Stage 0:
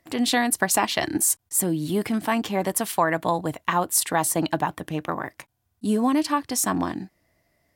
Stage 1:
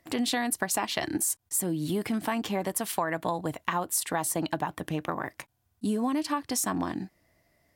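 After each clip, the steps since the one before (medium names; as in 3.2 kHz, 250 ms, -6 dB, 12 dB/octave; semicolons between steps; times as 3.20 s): compression 3:1, threshold -27 dBFS, peak gain reduction 9 dB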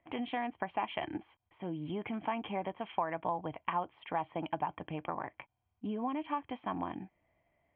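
rippled Chebyshev low-pass 3.3 kHz, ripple 9 dB; bass shelf 160 Hz +3.5 dB; trim -2 dB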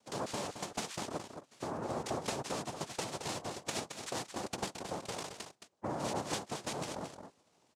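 compression, threshold -40 dBFS, peak gain reduction 12.5 dB; noise-vocoded speech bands 2; delay 220 ms -8 dB; trim +4.5 dB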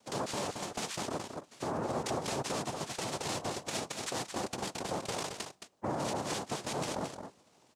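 peak limiter -30.5 dBFS, peak gain reduction 10.5 dB; on a send at -23 dB: reverberation RT60 0.70 s, pre-delay 8 ms; on the sum: trim +5.5 dB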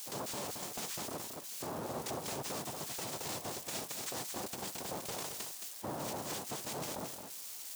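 zero-crossing glitches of -31 dBFS; trim -6 dB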